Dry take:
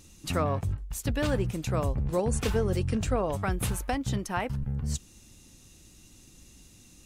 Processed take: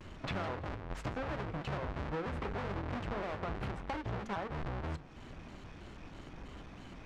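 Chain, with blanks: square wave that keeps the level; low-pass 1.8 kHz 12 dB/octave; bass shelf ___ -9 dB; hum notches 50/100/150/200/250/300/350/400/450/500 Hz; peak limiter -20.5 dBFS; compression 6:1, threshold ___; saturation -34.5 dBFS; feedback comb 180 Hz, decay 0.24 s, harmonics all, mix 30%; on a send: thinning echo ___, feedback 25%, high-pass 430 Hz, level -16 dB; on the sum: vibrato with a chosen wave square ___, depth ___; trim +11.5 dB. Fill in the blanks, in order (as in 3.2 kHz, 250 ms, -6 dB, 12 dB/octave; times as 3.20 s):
490 Hz, -45 dBFS, 167 ms, 3.1 Hz, 160 cents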